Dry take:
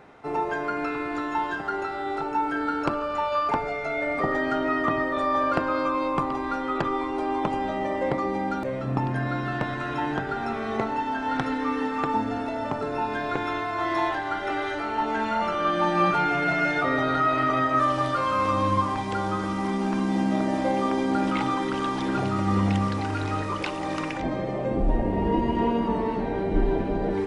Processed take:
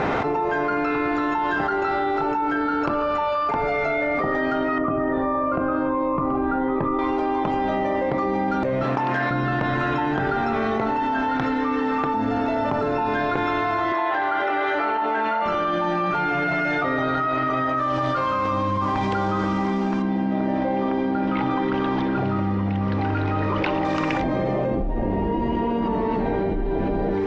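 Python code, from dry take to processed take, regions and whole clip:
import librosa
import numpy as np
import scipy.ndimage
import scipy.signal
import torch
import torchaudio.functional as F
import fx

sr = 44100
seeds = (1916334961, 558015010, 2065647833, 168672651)

y = fx.chain(x, sr, fx.lowpass(hz=1400.0, slope=12),
    fx.notch_cascade(direction='rising', hz=1.4), at=(4.78, 6.99))
y = fx.chain(y, sr, fx.highpass(hz=840.0, slope=6),
    fx.doppler_dist(depth_ms=0.14), at=(8.83, 9.31))
y = fx.chain(y, sr, fx.highpass(hz=64.0, slope=12),
    fx.bass_treble(bass_db=-15, treble_db=-10), at=(13.92, 15.46))
y = fx.chain(y, sr, fx.air_absorb(metres=200.0),
    fx.notch(hz=1200.0, q=18.0), at=(20.02, 23.85))
y = scipy.signal.sosfilt(scipy.signal.butter(4, 6900.0, 'lowpass', fs=sr, output='sos'), y)
y = fx.high_shelf(y, sr, hz=4800.0, db=-8.0)
y = fx.env_flatten(y, sr, amount_pct=100)
y = F.gain(torch.from_numpy(y), -5.0).numpy()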